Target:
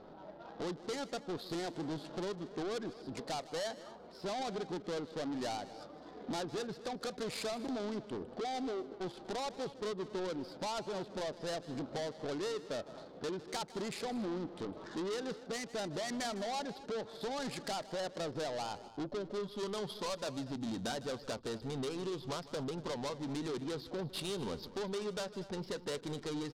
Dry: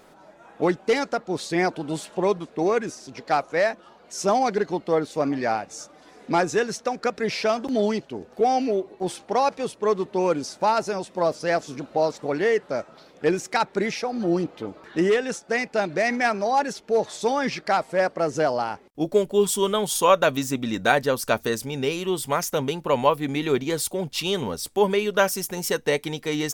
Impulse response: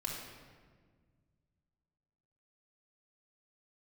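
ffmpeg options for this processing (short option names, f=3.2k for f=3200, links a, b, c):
-filter_complex "[0:a]acompressor=threshold=-31dB:ratio=5,aresample=11025,asoftclip=type=tanh:threshold=-35.5dB,aresample=44100,adynamicsmooth=sensitivity=6.5:basefreq=820,asplit=2[a][b];[b]adelay=239.1,volume=-16dB,highshelf=f=4k:g=-5.38[c];[a][c]amix=inputs=2:normalize=0,aexciter=amount=3.2:drive=9.2:freq=3.5k,asplit=2[d][e];[e]aecho=0:1:155:0.141[f];[d][f]amix=inputs=2:normalize=0,volume=1dB"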